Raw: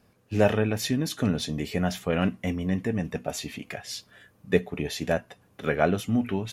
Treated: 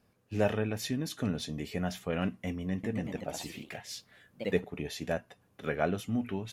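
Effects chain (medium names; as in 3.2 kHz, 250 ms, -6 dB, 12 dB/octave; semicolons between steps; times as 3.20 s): 2.71–4.74 s: ever faster or slower copies 125 ms, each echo +2 st, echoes 2, each echo -6 dB; trim -7 dB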